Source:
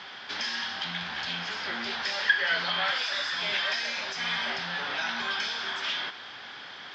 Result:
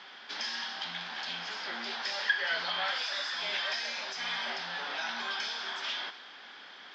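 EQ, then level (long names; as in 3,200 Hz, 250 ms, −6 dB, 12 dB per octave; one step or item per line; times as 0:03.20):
high-pass filter 190 Hz 24 dB per octave
dynamic equaliser 780 Hz, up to +4 dB, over −42 dBFS, Q 1.2
dynamic equaliser 5,300 Hz, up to +4 dB, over −44 dBFS, Q 0.96
−6.5 dB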